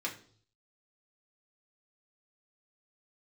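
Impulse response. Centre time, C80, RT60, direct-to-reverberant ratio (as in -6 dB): 15 ms, 16.0 dB, no single decay rate, -2.5 dB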